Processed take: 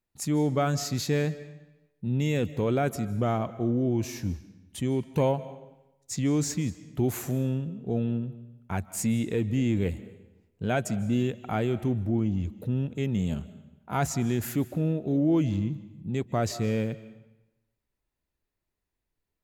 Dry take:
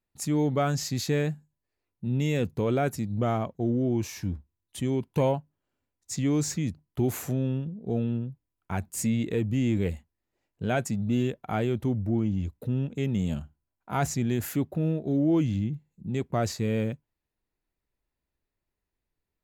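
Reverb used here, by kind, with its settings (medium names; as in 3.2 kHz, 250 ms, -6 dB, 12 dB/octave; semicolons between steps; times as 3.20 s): algorithmic reverb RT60 0.97 s, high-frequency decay 0.9×, pre-delay 115 ms, DRR 16 dB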